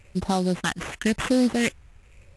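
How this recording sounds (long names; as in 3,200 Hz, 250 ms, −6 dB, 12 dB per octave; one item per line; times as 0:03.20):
phaser sweep stages 4, 0.93 Hz, lowest notch 550–1,800 Hz
aliases and images of a low sample rate 4,800 Hz, jitter 20%
AAC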